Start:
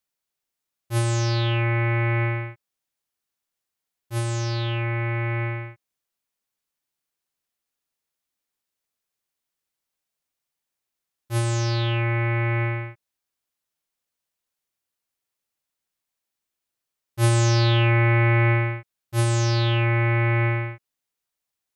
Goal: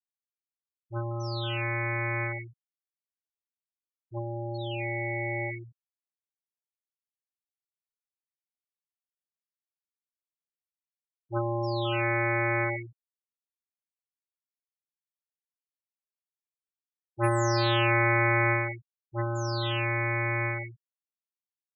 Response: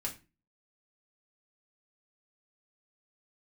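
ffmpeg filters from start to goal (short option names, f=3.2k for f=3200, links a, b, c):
-filter_complex "[0:a]afftfilt=real='re*gte(hypot(re,im),0.0891)':imag='im*gte(hypot(re,im),0.0891)':win_size=1024:overlap=0.75,lowshelf=f=430:g=-10,acrossover=split=200|1800[a][b][c];[b]dynaudnorm=f=710:g=13:m=8dB[d];[a][d][c]amix=inputs=3:normalize=0,volume=-2dB"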